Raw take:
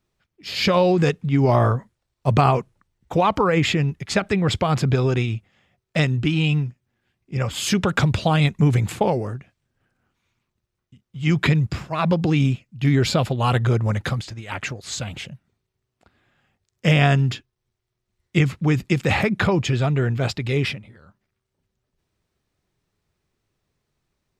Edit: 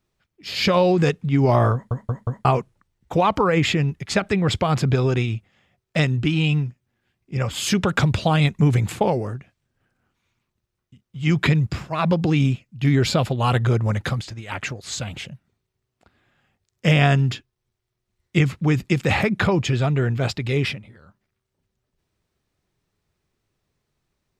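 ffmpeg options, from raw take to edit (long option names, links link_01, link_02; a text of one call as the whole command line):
ffmpeg -i in.wav -filter_complex "[0:a]asplit=5[link_01][link_02][link_03][link_04][link_05];[link_01]atrim=end=1.912[link_06];[link_02]atrim=start=1.728:end=1.912[link_07];[link_03]atrim=start=1.728:end=1.912[link_08];[link_04]atrim=start=1.728:end=1.912[link_09];[link_05]atrim=start=2.448[link_10];[link_06][link_07]acrossfade=duration=0.004:curve1=hsin:curve2=hsin[link_11];[link_11][link_08]acrossfade=duration=0.004:curve1=hsin:curve2=hsin[link_12];[link_12][link_09]acrossfade=duration=0.004:curve1=hsin:curve2=hsin[link_13];[link_13][link_10]acrossfade=duration=0.004:curve1=hsin:curve2=hsin" out.wav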